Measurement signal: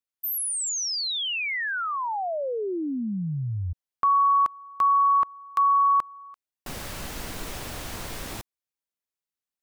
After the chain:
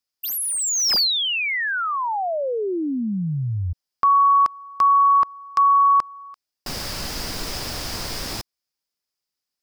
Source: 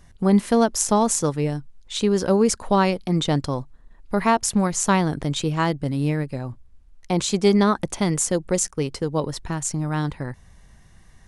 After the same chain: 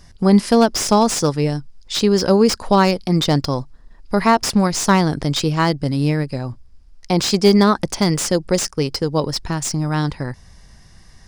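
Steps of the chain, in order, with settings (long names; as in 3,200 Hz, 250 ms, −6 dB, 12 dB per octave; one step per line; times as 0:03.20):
parametric band 5,000 Hz +13 dB 0.35 octaves
slew-rate limiting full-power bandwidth 370 Hz
level +4.5 dB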